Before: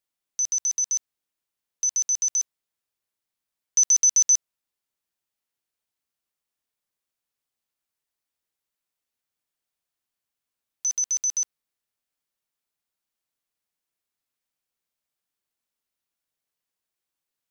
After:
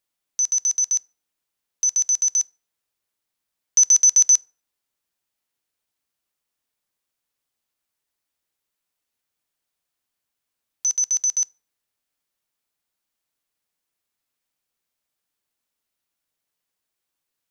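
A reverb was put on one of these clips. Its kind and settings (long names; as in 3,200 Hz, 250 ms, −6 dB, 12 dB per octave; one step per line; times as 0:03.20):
feedback delay network reverb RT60 0.49 s, low-frequency decay 0.75×, high-frequency decay 0.6×, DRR 19.5 dB
level +4 dB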